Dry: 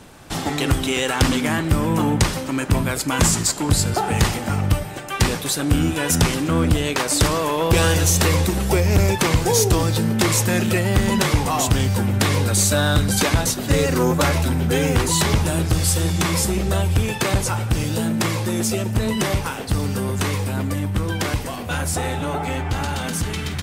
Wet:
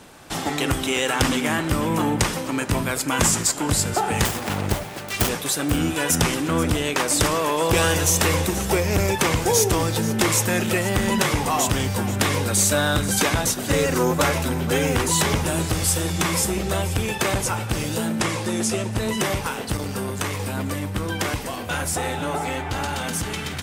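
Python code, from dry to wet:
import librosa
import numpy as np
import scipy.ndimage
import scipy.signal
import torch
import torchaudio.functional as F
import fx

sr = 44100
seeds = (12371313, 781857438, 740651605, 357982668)

y = fx.self_delay(x, sr, depth_ms=0.99, at=(4.25, 5.29))
y = fx.dynamic_eq(y, sr, hz=4300.0, q=3.4, threshold_db=-38.0, ratio=4.0, max_db=-4)
y = fx.lowpass(y, sr, hz=11000.0, slope=24, at=(18.19, 18.97))
y = fx.low_shelf(y, sr, hz=180.0, db=-8.0)
y = y + 10.0 ** (-14.5 / 20.0) * np.pad(y, (int(484 * sr / 1000.0), 0))[:len(y)]
y = fx.transformer_sat(y, sr, knee_hz=440.0, at=(19.77, 20.4))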